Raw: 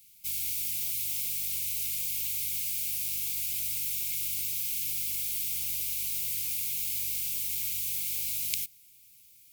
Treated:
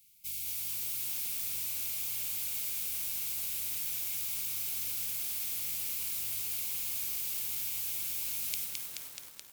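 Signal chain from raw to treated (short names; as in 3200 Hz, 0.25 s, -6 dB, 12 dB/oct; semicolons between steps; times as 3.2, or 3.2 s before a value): 4.29–6.19 HPF 49 Hz 24 dB/oct; lo-fi delay 0.214 s, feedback 80%, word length 7-bit, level -3 dB; gain -5.5 dB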